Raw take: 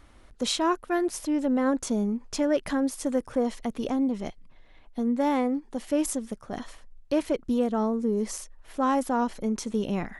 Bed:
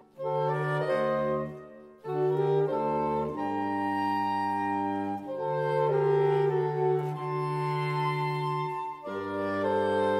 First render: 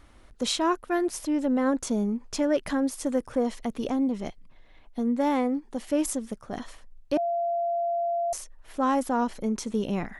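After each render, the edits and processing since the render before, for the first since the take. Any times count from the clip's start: 7.17–8.33 s: bleep 686 Hz -24 dBFS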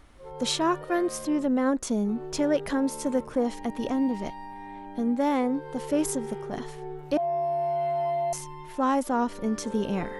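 add bed -12 dB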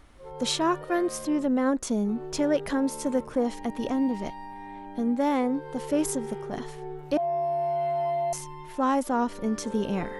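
no audible change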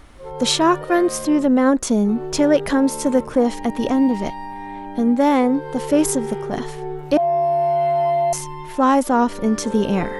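trim +9 dB

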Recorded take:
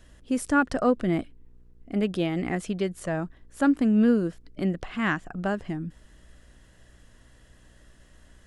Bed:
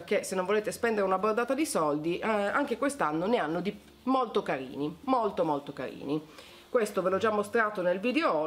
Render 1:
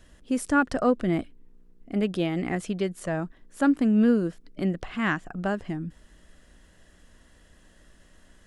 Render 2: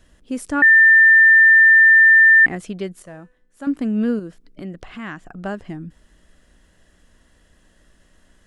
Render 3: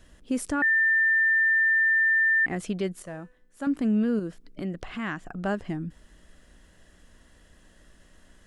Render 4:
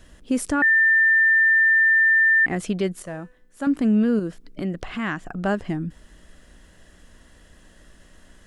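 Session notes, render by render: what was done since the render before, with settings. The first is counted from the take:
de-hum 60 Hz, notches 2
0.62–2.46 s: bleep 1.79 kHz -7 dBFS; 3.02–3.67 s: feedback comb 250 Hz, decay 0.71 s, mix 70%; 4.19–5.44 s: compression 2:1, threshold -32 dBFS
compression, threshold -15 dBFS, peak gain reduction 6 dB; peak limiter -18.5 dBFS, peak gain reduction 9 dB
trim +5 dB

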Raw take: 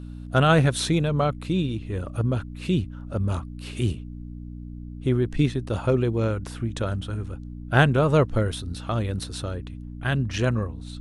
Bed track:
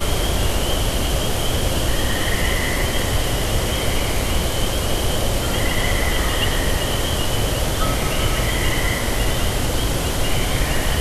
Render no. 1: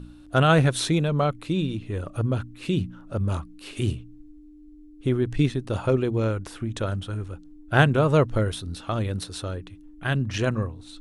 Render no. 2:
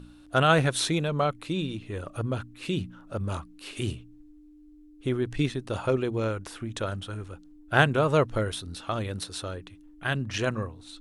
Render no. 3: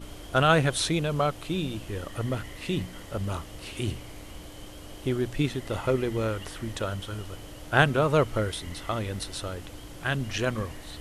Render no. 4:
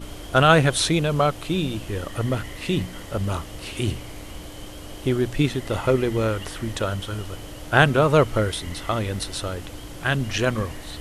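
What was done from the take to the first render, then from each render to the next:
de-hum 60 Hz, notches 4
bass shelf 350 Hz -7 dB
add bed track -23.5 dB
trim +5.5 dB; peak limiter -1 dBFS, peak gain reduction 2 dB

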